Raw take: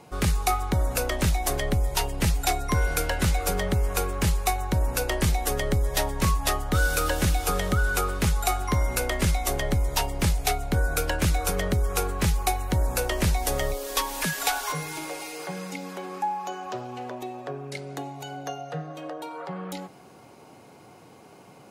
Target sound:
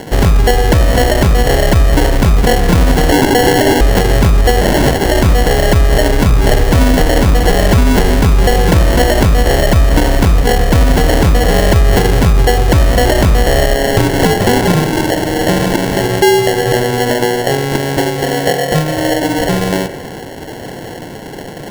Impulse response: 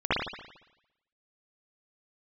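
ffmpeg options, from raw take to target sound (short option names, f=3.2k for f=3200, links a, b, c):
-filter_complex "[0:a]asettb=1/sr,asplit=3[a][b][c];[a]atrim=end=3.124[d];[b]atrim=start=3.12:end=3.81,asetpts=PTS-STARTPTS,afade=t=in:d=0.004:c=qsin,afade=t=out:st=0.686:d=0.004:c=qsin,highpass=f=880:t=q:w=9.4[e];[c]atrim=start=3.806[f];[d][e]acrossfade=d=0.004:c1=hsin:c2=qsin[g];[g][f]acrossfade=d=0.004:c1=qsin:c2=hsin,asettb=1/sr,asplit=3[h][i][j];[h]atrim=end=15.514[k];[i]atrim=start=15.51:end=16.07,asetpts=PTS-STARTPTS,afade=t=in:d=0.004:c=qsin,afade=t=out:st=0.556:d=0.004:c=qsin,equalizer=f=2.3k:t=o:w=1.7:g=8.5[l];[j]atrim=start=16.066[m];[k][l]acrossfade=d=0.004:c1=hsin:c2=qsin[n];[n][m]acrossfade=d=0.004:c1=qsin:c2=hsin,asplit=2[o][p];[p]acompressor=threshold=-35dB:ratio=6,volume=-2dB[q];[o][q]amix=inputs=2:normalize=0,asettb=1/sr,asplit=3[r][s][t];[r]atrim=end=4.614[u];[s]atrim=start=4.61:end=5.06,asetpts=PTS-STARTPTS,afade=t=in:d=0.004:c=qsin,afade=t=out:st=0.446:d=0.004:c=qsin,aeval=exprs='(mod(13.3*val(0)+1,2)-1)/13.3':c=same[v];[t]atrim=start=5.056[w];[u][v]acrossfade=d=0.004:c1=hsin:c2=qsin[x];[x][w]acrossfade=d=0.004:c1=qsin:c2=hsin,acrossover=split=3800[y][z];[z]acompressor=threshold=-34dB:ratio=4:attack=1:release=60[aa];[y][aa]amix=inputs=2:normalize=0,acrusher=samples=36:mix=1:aa=0.000001,asplit=2[ab][ac];[1:a]atrim=start_sample=2205,asetrate=29988,aresample=44100[ad];[ac][ad]afir=irnorm=-1:irlink=0,volume=-29.5dB[ae];[ab][ae]amix=inputs=2:normalize=0,alimiter=level_in=18.5dB:limit=-1dB:release=50:level=0:latency=1,volume=-1dB"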